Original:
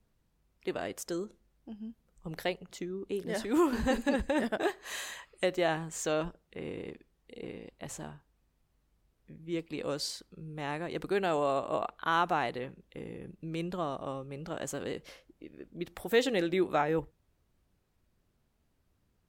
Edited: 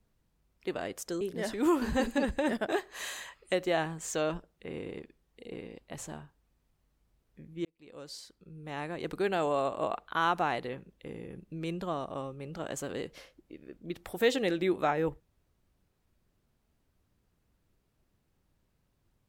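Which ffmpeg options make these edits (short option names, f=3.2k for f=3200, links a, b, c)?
-filter_complex "[0:a]asplit=3[a][b][c];[a]atrim=end=1.212[d];[b]atrim=start=3.118:end=9.56,asetpts=PTS-STARTPTS,afade=t=out:st=6.438:d=0.004:c=hsin[e];[c]atrim=start=9.56,asetpts=PTS-STARTPTS,afade=t=in:d=1.4[f];[e][f]concat=n=2:v=0:a=1[g];[d][g]acrossfade=d=0.004:c1=hsin:c2=hsin"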